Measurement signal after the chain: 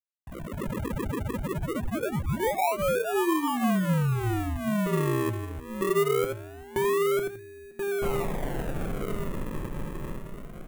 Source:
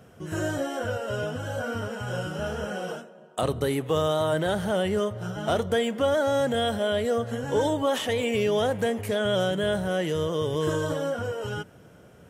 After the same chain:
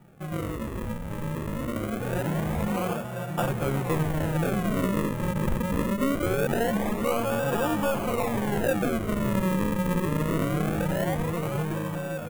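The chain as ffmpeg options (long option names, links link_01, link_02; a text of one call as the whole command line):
ffmpeg -i in.wav -filter_complex "[0:a]dynaudnorm=framelen=290:gausssize=13:maxgain=9dB,asoftclip=type=tanh:threshold=-13.5dB,equalizer=frequency=480:width=1.1:gain=-7.5,aecho=1:1:5.7:0.75,asplit=2[link_01][link_02];[link_02]adelay=1032,lowpass=frequency=1600:poles=1,volume=-5.5dB,asplit=2[link_03][link_04];[link_04]adelay=1032,lowpass=frequency=1600:poles=1,volume=0.3,asplit=2[link_05][link_06];[link_06]adelay=1032,lowpass=frequency=1600:poles=1,volume=0.3,asplit=2[link_07][link_08];[link_08]adelay=1032,lowpass=frequency=1600:poles=1,volume=0.3[link_09];[link_01][link_03][link_05][link_07][link_09]amix=inputs=5:normalize=0,acrossover=split=650|6700[link_10][link_11][link_12];[link_10]acompressor=threshold=-24dB:ratio=4[link_13];[link_11]acompressor=threshold=-29dB:ratio=4[link_14];[link_12]acompressor=threshold=-46dB:ratio=4[link_15];[link_13][link_14][link_15]amix=inputs=3:normalize=0,acrusher=samples=41:mix=1:aa=0.000001:lfo=1:lforange=41:lforate=0.23,equalizer=frequency=4800:width=1.2:gain=-13.5,acrusher=bits=11:mix=0:aa=0.000001,bandreject=frequency=60:width_type=h:width=6,bandreject=frequency=120:width_type=h:width=6,bandreject=frequency=180:width_type=h:width=6,bandreject=frequency=240:width_type=h:width=6,bandreject=frequency=300:width_type=h:width=6,bandreject=frequency=360:width_type=h:width=6,bandreject=frequency=420:width_type=h:width=6" out.wav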